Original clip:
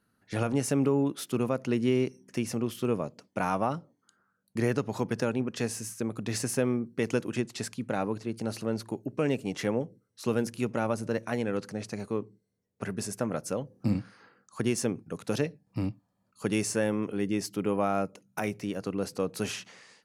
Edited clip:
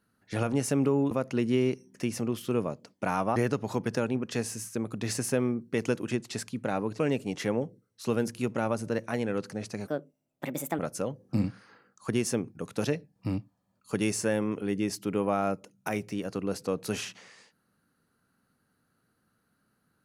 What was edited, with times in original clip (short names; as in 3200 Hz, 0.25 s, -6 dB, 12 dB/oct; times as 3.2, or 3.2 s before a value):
1.11–1.45 cut
3.7–4.61 cut
8.24–9.18 cut
12.06–13.3 speed 135%